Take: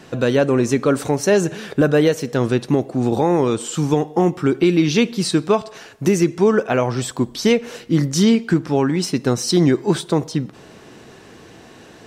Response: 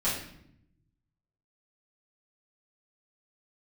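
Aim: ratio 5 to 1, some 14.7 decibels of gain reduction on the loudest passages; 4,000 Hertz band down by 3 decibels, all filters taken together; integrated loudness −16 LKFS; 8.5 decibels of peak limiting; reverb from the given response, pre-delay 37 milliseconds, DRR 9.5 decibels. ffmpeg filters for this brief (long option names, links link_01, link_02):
-filter_complex "[0:a]equalizer=frequency=4000:width_type=o:gain=-4,acompressor=threshold=-28dB:ratio=5,alimiter=level_in=0.5dB:limit=-24dB:level=0:latency=1,volume=-0.5dB,asplit=2[link_01][link_02];[1:a]atrim=start_sample=2205,adelay=37[link_03];[link_02][link_03]afir=irnorm=-1:irlink=0,volume=-18.5dB[link_04];[link_01][link_04]amix=inputs=2:normalize=0,volume=18.5dB"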